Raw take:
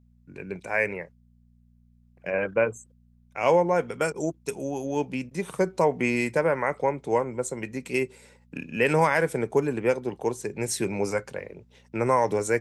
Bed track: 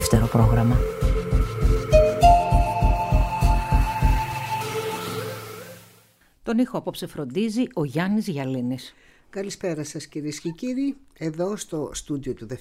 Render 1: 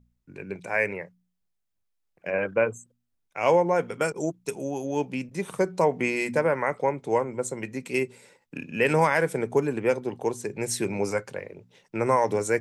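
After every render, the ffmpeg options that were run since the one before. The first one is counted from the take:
-af "bandreject=f=60:t=h:w=4,bandreject=f=120:t=h:w=4,bandreject=f=180:t=h:w=4,bandreject=f=240:t=h:w=4"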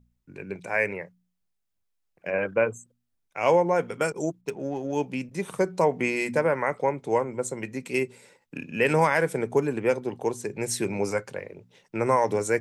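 -filter_complex "[0:a]asettb=1/sr,asplit=3[a][b][c];[a]atrim=end=4.414[d];[b]atrim=start=4.41:end=4.93,asetpts=PTS-STARTPTS,afade=t=in:d=0.004:c=qsin,afade=t=out:st=0.516:d=0.004:c=qsin,adynamicsmooth=sensitivity=6:basefreq=1.9k[e];[c]atrim=start=4.926[f];[d][e]acrossfade=d=0.004:c1=hsin:c2=qsin[g];[g][f]acrossfade=d=0.004:c1=qsin:c2=hsin"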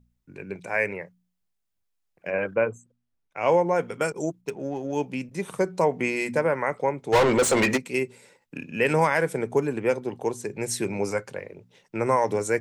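-filter_complex "[0:a]asettb=1/sr,asplit=3[a][b][c];[a]atrim=end=2.554[d];[b]atrim=start=2.55:end=3.52,asetpts=PTS-STARTPTS,afade=t=in:d=0.004:c=qsin,afade=t=out:st=0.966:d=0.004:c=qsin,highshelf=f=4.9k:g=-11[e];[c]atrim=start=3.516[f];[d][e]acrossfade=d=0.004:c1=hsin:c2=qsin[g];[g][f]acrossfade=d=0.004:c1=qsin:c2=hsin,asplit=3[h][i][j];[h]afade=t=out:st=7.12:d=0.02[k];[i]asplit=2[l][m];[m]highpass=f=720:p=1,volume=35dB,asoftclip=type=tanh:threshold=-11.5dB[n];[l][n]amix=inputs=2:normalize=0,lowpass=f=4k:p=1,volume=-6dB,afade=t=in:st=7.12:d=0.02,afade=t=out:st=7.76:d=0.02[o];[j]afade=t=in:st=7.76:d=0.02[p];[k][o][p]amix=inputs=3:normalize=0"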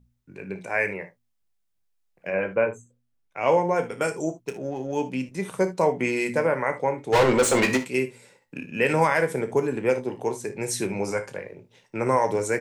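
-filter_complex "[0:a]asplit=2[a][b];[b]adelay=16,volume=-12dB[c];[a][c]amix=inputs=2:normalize=0,aecho=1:1:31|58|75:0.237|0.178|0.133"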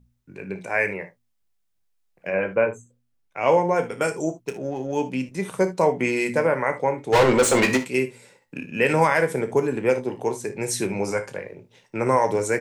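-af "volume=2dB"

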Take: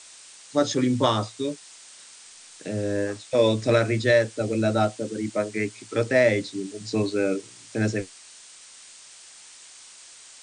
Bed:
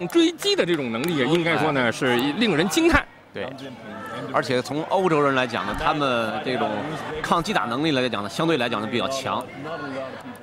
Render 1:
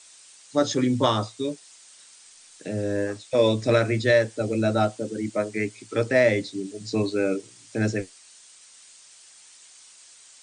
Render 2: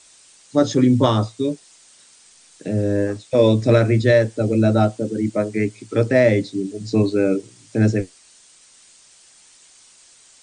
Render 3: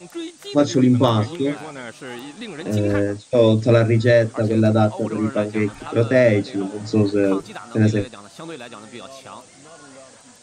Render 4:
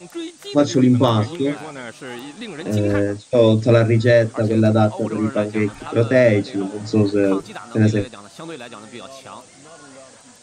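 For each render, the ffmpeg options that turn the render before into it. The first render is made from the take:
-af "afftdn=nr=6:nf=-48"
-af "lowshelf=f=490:g=10"
-filter_complex "[1:a]volume=-13dB[a];[0:a][a]amix=inputs=2:normalize=0"
-af "volume=1dB,alimiter=limit=-3dB:level=0:latency=1"

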